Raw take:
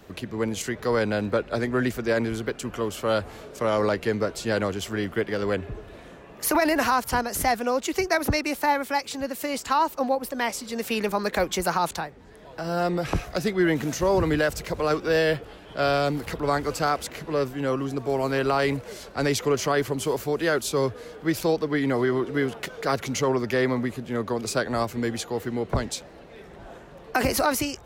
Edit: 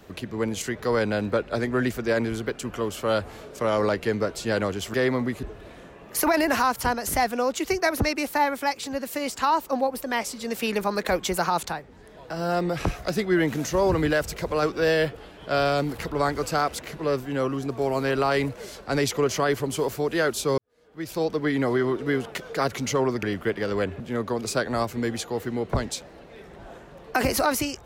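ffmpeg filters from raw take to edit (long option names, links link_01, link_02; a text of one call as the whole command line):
ffmpeg -i in.wav -filter_complex "[0:a]asplit=6[link_01][link_02][link_03][link_04][link_05][link_06];[link_01]atrim=end=4.942[link_07];[link_02]atrim=start=23.508:end=24.002[link_08];[link_03]atrim=start=5.708:end=20.86,asetpts=PTS-STARTPTS,afade=type=out:start_time=15.148:duration=0.004:curve=hsin[link_09];[link_04]atrim=start=20.86:end=23.512,asetpts=PTS-STARTPTS,afade=type=in:duration=0.75:curve=qua[link_10];[link_05]atrim=start=4.938:end=5.712[link_11];[link_06]atrim=start=23.998[link_12];[link_07][link_08]acrossfade=duration=0.004:curve1=hsin:curve2=hsin[link_13];[link_09][link_10]concat=n=2:v=0:a=1[link_14];[link_13][link_14]acrossfade=duration=0.004:curve1=hsin:curve2=hsin[link_15];[link_15][link_11]acrossfade=duration=0.004:curve1=hsin:curve2=hsin[link_16];[link_16][link_12]acrossfade=duration=0.004:curve1=hsin:curve2=hsin" out.wav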